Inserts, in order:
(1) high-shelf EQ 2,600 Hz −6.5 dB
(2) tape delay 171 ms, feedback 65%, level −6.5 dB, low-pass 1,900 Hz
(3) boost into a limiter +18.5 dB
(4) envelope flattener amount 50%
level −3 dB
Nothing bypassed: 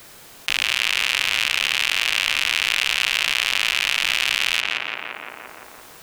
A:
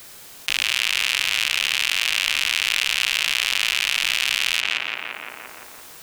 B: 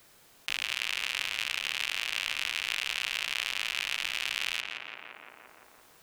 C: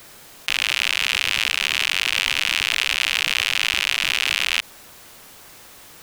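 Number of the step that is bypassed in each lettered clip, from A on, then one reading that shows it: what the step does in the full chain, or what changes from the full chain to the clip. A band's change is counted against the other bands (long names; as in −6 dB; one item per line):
1, 8 kHz band +3.5 dB
3, change in crest factor +2.0 dB
2, change in momentary loudness spread −8 LU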